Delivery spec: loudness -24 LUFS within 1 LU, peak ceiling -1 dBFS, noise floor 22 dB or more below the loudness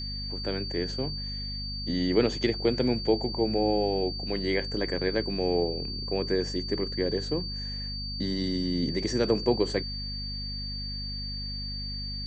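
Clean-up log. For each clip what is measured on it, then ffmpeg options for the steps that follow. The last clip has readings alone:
hum 50 Hz; highest harmonic 250 Hz; hum level -35 dBFS; steady tone 4.6 kHz; tone level -35 dBFS; loudness -29.0 LUFS; peak level -10.5 dBFS; loudness target -24.0 LUFS
-> -af "bandreject=f=50:t=h:w=6,bandreject=f=100:t=h:w=6,bandreject=f=150:t=h:w=6,bandreject=f=200:t=h:w=6,bandreject=f=250:t=h:w=6"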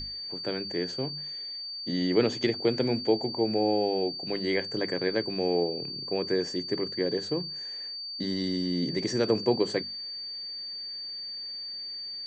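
hum not found; steady tone 4.6 kHz; tone level -35 dBFS
-> -af "bandreject=f=4600:w=30"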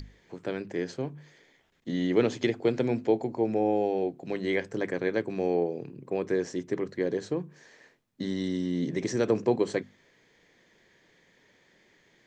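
steady tone not found; loudness -29.5 LUFS; peak level -11.0 dBFS; loudness target -24.0 LUFS
-> -af "volume=1.88"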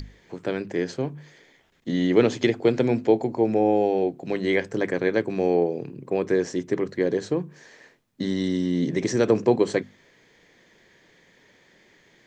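loudness -24.0 LUFS; peak level -5.5 dBFS; noise floor -59 dBFS

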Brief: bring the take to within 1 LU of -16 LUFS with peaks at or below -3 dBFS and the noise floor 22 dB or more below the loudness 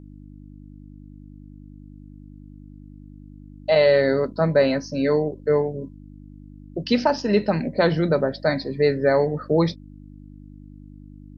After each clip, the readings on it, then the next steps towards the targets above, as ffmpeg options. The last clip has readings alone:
hum 50 Hz; highest harmonic 300 Hz; hum level -40 dBFS; loudness -21.5 LUFS; peak level -6.0 dBFS; loudness target -16.0 LUFS
-> -af "bandreject=f=50:t=h:w=4,bandreject=f=100:t=h:w=4,bandreject=f=150:t=h:w=4,bandreject=f=200:t=h:w=4,bandreject=f=250:t=h:w=4,bandreject=f=300:t=h:w=4"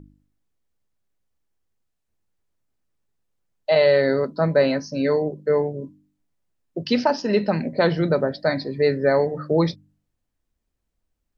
hum not found; loudness -21.5 LUFS; peak level -6.0 dBFS; loudness target -16.0 LUFS
-> -af "volume=1.88,alimiter=limit=0.708:level=0:latency=1"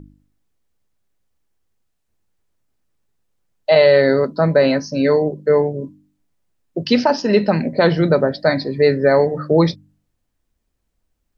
loudness -16.0 LUFS; peak level -3.0 dBFS; noise floor -72 dBFS

